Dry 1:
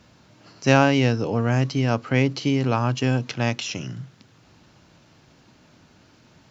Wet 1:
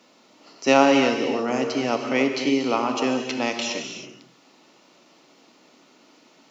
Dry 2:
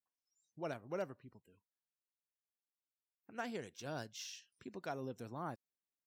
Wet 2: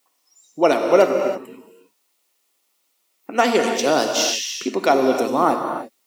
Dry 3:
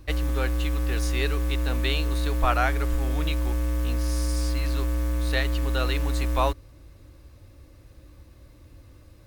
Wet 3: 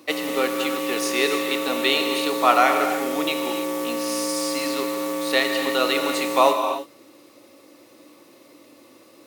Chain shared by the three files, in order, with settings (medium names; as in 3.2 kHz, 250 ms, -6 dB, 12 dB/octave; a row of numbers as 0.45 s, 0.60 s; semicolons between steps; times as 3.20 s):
high-pass 250 Hz 24 dB/octave; band-stop 1.6 kHz, Q 5.5; gated-style reverb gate 350 ms flat, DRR 4 dB; peak normalisation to -2 dBFS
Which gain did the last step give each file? +1.0 dB, +26.5 dB, +7.5 dB